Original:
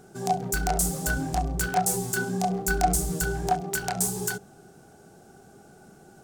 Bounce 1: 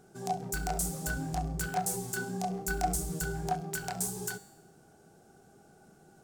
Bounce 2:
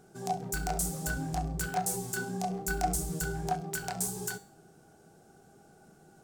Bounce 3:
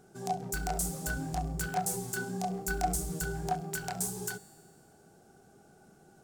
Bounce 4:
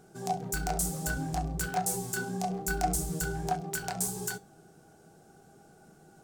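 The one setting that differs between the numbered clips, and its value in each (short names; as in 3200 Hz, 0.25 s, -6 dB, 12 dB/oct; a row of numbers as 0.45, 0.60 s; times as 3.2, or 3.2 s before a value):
resonator, decay: 0.96, 0.45, 2, 0.2 s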